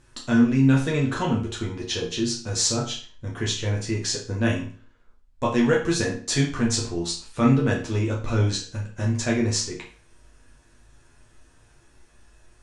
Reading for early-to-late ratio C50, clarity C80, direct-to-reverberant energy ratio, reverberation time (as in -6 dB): 7.0 dB, 12.5 dB, -3.0 dB, 0.40 s